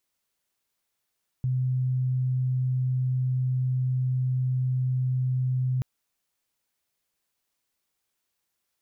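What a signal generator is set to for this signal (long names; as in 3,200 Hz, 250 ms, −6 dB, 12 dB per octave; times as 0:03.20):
tone sine 128 Hz −22.5 dBFS 4.38 s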